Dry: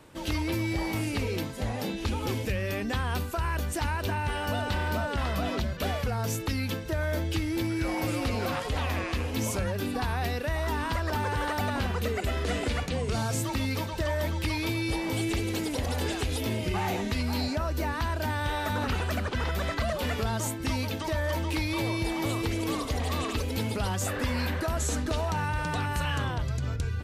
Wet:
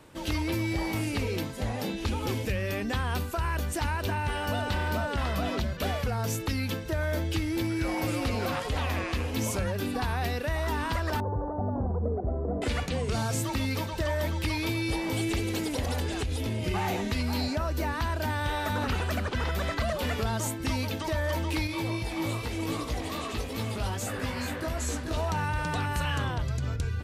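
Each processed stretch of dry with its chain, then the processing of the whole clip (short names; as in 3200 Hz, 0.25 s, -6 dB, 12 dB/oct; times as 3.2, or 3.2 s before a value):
11.2–12.62 inverse Chebyshev low-pass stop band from 2800 Hz, stop band 60 dB + flutter echo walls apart 10.4 m, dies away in 0.26 s
16–16.64 LPF 12000 Hz 24 dB/oct + low shelf 160 Hz +7.5 dB + compressor 4:1, threshold -27 dBFS
21.67–25.17 chorus 2.5 Hz, delay 16.5 ms, depth 2.5 ms + echo 0.428 s -8 dB
whole clip: dry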